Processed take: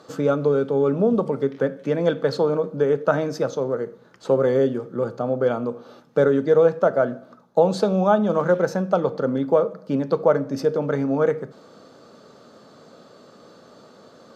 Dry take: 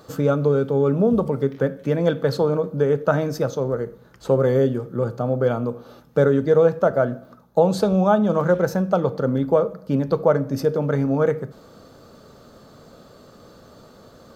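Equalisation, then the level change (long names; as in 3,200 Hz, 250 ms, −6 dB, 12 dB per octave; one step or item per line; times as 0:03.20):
band-pass filter 190–7,600 Hz
0.0 dB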